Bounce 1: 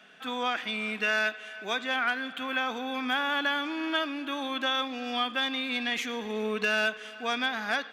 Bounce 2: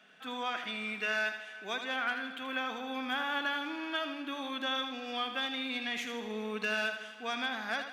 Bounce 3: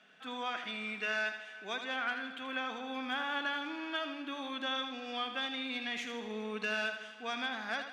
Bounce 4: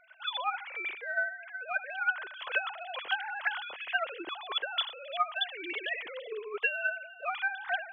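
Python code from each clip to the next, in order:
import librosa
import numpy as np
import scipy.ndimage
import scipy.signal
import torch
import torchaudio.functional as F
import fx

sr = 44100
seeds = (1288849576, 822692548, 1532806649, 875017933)

y1 = fx.echo_feedback(x, sr, ms=80, feedback_pct=48, wet_db=-8.5)
y1 = F.gain(torch.from_numpy(y1), -6.0).numpy()
y2 = scipy.signal.sosfilt(scipy.signal.butter(2, 8800.0, 'lowpass', fs=sr, output='sos'), y1)
y2 = F.gain(torch.from_numpy(y2), -2.0).numpy()
y3 = fx.sine_speech(y2, sr)
y3 = fx.rider(y3, sr, range_db=4, speed_s=0.5)
y3 = fx.transient(y3, sr, attack_db=8, sustain_db=1)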